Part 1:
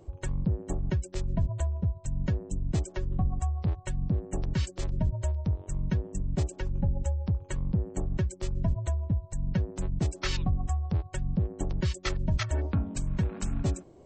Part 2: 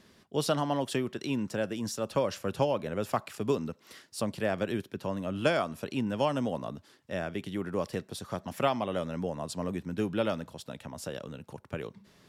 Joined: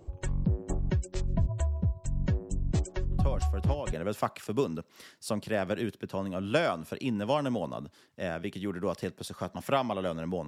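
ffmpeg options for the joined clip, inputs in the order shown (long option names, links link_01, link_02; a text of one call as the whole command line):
ffmpeg -i cue0.wav -i cue1.wav -filter_complex "[1:a]asplit=2[link_01][link_02];[0:a]apad=whole_dur=10.47,atrim=end=10.47,atrim=end=3.932[link_03];[link_02]atrim=start=2.838:end=9.38[link_04];[link_01]atrim=start=2.09:end=2.84,asetpts=PTS-STARTPTS,volume=-7.5dB,afade=type=in:duration=0.004:curve=hsin,afade=type=out:start_time=0.746:duration=0.004:curve=hsin,adelay=3180[link_05];[link_03][link_04]acrossfade=duration=0.004:curve1=hsin:curve2=hsin[link_06];[link_06][link_05]amix=inputs=2:normalize=0" out.wav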